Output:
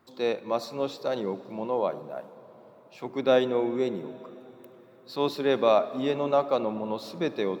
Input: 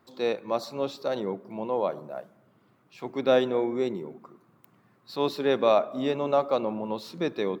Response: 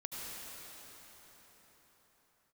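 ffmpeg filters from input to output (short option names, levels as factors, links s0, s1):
-filter_complex "[0:a]asplit=2[s0][s1];[1:a]atrim=start_sample=2205,adelay=76[s2];[s1][s2]afir=irnorm=-1:irlink=0,volume=0.133[s3];[s0][s3]amix=inputs=2:normalize=0"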